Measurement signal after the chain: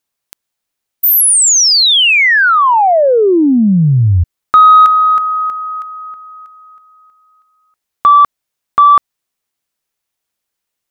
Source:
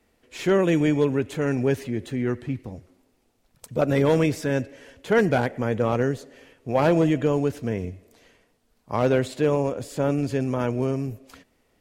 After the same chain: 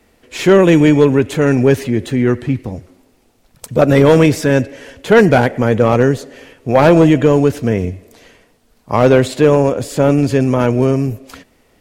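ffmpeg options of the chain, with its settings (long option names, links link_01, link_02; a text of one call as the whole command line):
ffmpeg -i in.wav -af "volume=12dB,asoftclip=hard,volume=-12dB,acontrast=78,volume=5dB" out.wav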